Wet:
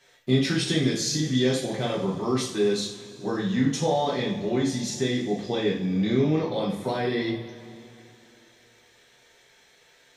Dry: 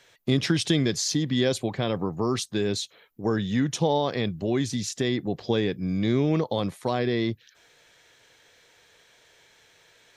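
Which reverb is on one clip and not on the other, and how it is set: two-slope reverb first 0.47 s, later 3 s, from -18 dB, DRR -6 dB; gain -6.5 dB

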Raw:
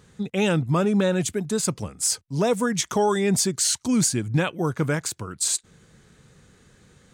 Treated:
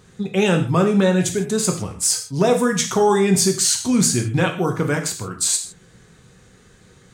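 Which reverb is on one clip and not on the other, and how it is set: non-linear reverb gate 0.18 s falling, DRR 3 dB; gain +3 dB

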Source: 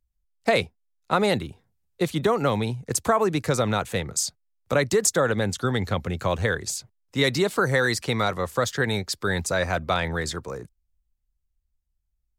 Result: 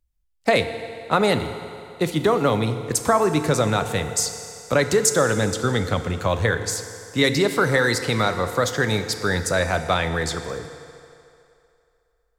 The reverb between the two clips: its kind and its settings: FDN reverb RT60 2.7 s, low-frequency decay 0.7×, high-frequency decay 0.85×, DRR 8 dB; gain +2.5 dB

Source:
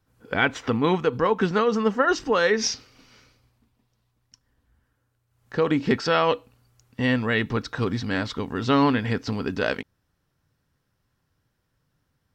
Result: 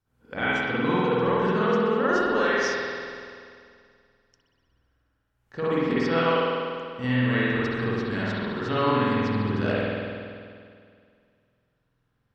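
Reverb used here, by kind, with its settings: spring tank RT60 2.2 s, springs 48 ms, chirp 25 ms, DRR -9.5 dB; gain -10.5 dB

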